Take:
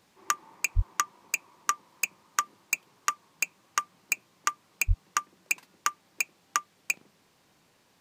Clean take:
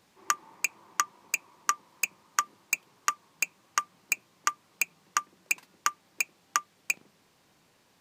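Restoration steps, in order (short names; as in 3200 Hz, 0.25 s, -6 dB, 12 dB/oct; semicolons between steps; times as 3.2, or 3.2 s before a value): clip repair -9 dBFS; 0.75–0.87 HPF 140 Hz 24 dB/oct; 4.87–4.99 HPF 140 Hz 24 dB/oct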